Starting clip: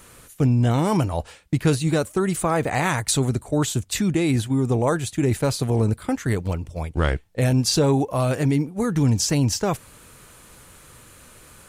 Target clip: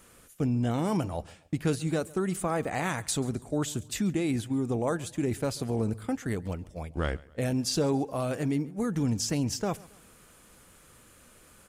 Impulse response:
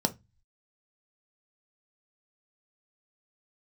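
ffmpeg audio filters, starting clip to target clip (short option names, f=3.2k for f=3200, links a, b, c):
-filter_complex "[0:a]aecho=1:1:137|274|411:0.0708|0.029|0.0119,asplit=2[a][b];[1:a]atrim=start_sample=2205,asetrate=39690,aresample=44100[c];[b][c]afir=irnorm=-1:irlink=0,volume=-24.5dB[d];[a][d]amix=inputs=2:normalize=0,volume=-9dB"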